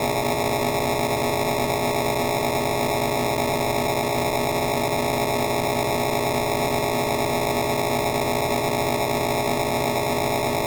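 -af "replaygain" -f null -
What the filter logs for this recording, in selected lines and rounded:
track_gain = +6.8 dB
track_peak = 0.171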